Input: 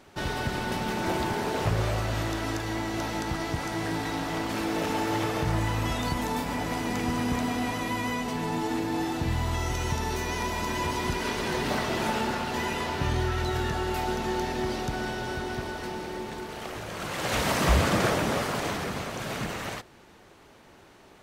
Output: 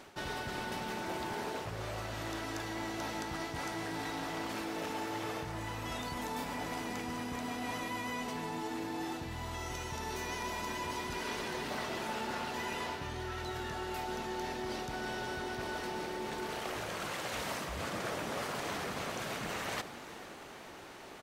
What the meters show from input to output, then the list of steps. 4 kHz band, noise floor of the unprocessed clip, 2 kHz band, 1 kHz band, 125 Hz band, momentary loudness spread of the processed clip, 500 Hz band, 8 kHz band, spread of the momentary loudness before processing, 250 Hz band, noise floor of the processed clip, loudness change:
-7.5 dB, -54 dBFS, -7.5 dB, -8.0 dB, -14.5 dB, 3 LU, -9.0 dB, -7.5 dB, 6 LU, -10.5 dB, -49 dBFS, -9.0 dB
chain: frequency-shifting echo 0.447 s, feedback 63%, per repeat +36 Hz, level -23.5 dB; reverse; compressor 10:1, threshold -38 dBFS, peak gain reduction 21 dB; reverse; low shelf 220 Hz -7.5 dB; gain +4.5 dB

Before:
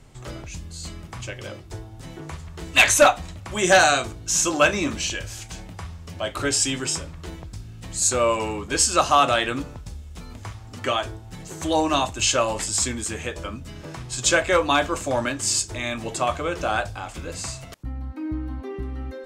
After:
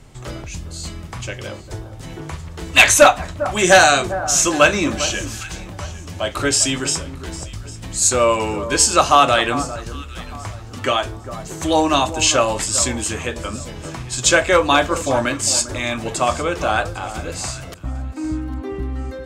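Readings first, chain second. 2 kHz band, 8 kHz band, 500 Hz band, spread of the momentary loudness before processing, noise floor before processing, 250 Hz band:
+5.0 dB, +5.0 dB, +5.0 dB, 20 LU, -41 dBFS, +5.0 dB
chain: echo with dull and thin repeats by turns 0.401 s, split 1400 Hz, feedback 51%, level -12.5 dB; gain +5 dB

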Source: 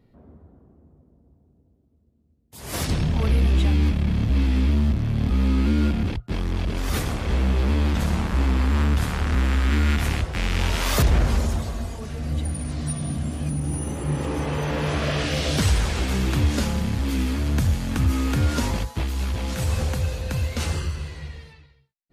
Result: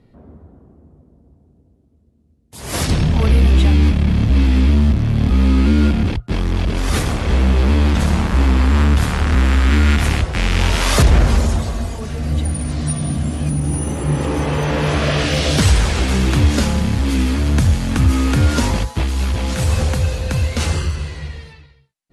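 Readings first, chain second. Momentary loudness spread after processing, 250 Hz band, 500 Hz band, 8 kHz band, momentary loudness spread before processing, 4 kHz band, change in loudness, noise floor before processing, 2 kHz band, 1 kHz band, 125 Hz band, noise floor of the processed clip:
7 LU, +7.0 dB, +7.0 dB, +7.0 dB, 7 LU, +7.0 dB, +7.0 dB, -61 dBFS, +7.0 dB, +7.0 dB, +7.0 dB, -54 dBFS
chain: steep low-pass 12000 Hz 96 dB/oct; gain +7 dB

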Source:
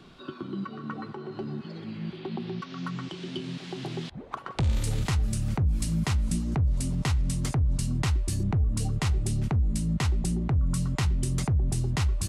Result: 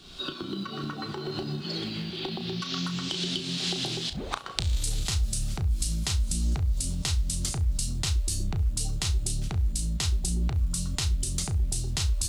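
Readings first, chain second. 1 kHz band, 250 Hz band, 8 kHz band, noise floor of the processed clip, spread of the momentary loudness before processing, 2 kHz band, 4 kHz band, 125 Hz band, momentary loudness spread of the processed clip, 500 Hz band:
-2.0 dB, -4.0 dB, +7.0 dB, -39 dBFS, 10 LU, -0.5 dB, +9.5 dB, -3.0 dB, 6 LU, -1.0 dB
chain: recorder AGC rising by 43 dB/s; graphic EQ 125/250/500/1000/2000/4000/8000 Hz -10/-9/-7/-9/-8/+5/+4 dB; compressor 2.5:1, threshold -30 dBFS, peak gain reduction 5 dB; companded quantiser 8-bit; flutter echo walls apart 5.8 m, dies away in 0.21 s; gain +5 dB

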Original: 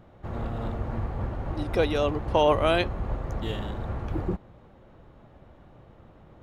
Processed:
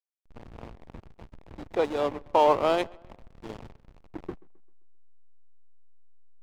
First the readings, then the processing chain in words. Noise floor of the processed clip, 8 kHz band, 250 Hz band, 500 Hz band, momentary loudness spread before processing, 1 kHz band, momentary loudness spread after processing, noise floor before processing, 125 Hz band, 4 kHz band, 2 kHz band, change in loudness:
-61 dBFS, n/a, -5.5 dB, -1.0 dB, 11 LU, +1.5 dB, 22 LU, -54 dBFS, -16.5 dB, -6.0 dB, -6.0 dB, +2.5 dB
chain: speaker cabinet 310–4000 Hz, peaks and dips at 920 Hz +6 dB, 1600 Hz -7 dB, 2700 Hz -5 dB; backlash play -25.5 dBFS; tape echo 0.133 s, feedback 45%, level -23.5 dB, low-pass 3100 Hz

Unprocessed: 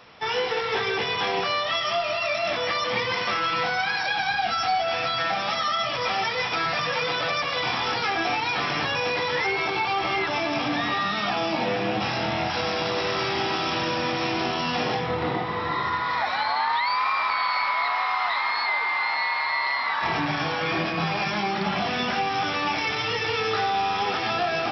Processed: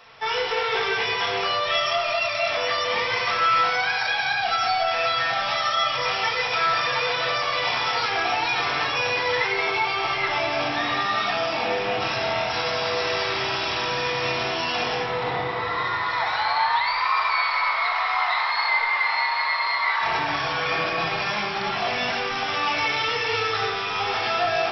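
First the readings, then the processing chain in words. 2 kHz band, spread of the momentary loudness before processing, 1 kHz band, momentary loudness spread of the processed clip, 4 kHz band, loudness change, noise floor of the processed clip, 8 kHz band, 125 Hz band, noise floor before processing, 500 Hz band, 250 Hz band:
+2.5 dB, 2 LU, +1.5 dB, 3 LU, +2.0 dB, +2.0 dB, -27 dBFS, n/a, -3.5 dB, -28 dBFS, +1.0 dB, -6.0 dB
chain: bell 210 Hz -12.5 dB 1.5 oct; shoebox room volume 1100 m³, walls mixed, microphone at 1.6 m

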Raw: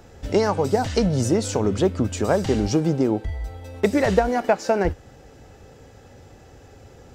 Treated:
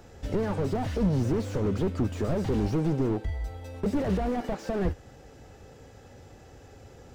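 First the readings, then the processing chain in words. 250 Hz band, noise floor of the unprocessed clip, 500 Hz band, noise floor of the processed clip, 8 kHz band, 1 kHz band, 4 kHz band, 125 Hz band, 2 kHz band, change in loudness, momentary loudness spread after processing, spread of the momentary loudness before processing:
-5.5 dB, -48 dBFS, -9.5 dB, -51 dBFS, -16.0 dB, -10.5 dB, -12.0 dB, -3.0 dB, -11.5 dB, -7.0 dB, 6 LU, 7 LU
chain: slew limiter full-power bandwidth 31 Hz; gain -3 dB

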